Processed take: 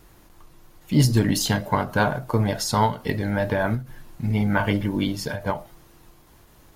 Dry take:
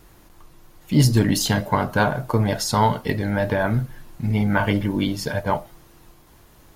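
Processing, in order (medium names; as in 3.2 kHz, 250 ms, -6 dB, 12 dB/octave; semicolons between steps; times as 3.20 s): endings held to a fixed fall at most 170 dB/s; trim -1.5 dB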